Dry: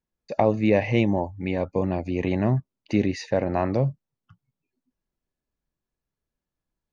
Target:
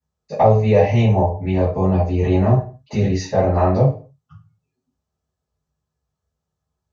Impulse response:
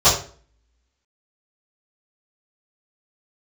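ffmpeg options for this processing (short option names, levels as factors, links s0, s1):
-filter_complex "[1:a]atrim=start_sample=2205,afade=t=out:st=0.35:d=0.01,atrim=end_sample=15876,asetrate=48510,aresample=44100[s0];[0:a][s0]afir=irnorm=-1:irlink=0,volume=0.15"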